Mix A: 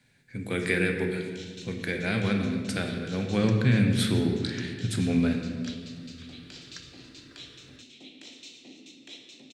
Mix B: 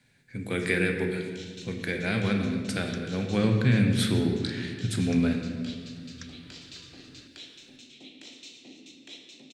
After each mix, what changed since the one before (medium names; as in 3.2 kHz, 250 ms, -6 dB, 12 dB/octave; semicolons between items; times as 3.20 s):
second sound: entry -0.55 s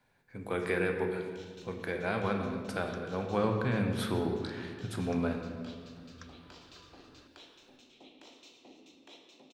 master: add graphic EQ 125/250/1000/2000/4000/8000 Hz -10/-7/+9/-9/-7/-12 dB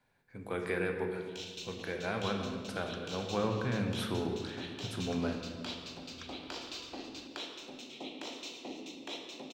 speech -3.0 dB; first sound +12.0 dB